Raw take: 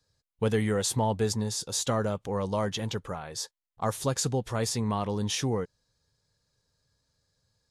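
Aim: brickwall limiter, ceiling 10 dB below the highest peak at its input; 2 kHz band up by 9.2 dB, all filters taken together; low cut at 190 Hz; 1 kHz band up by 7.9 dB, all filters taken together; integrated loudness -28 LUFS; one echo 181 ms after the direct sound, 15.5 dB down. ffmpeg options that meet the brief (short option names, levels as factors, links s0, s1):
-af "highpass=190,equalizer=f=1000:t=o:g=7.5,equalizer=f=2000:t=o:g=9,alimiter=limit=0.119:level=0:latency=1,aecho=1:1:181:0.168,volume=1.33"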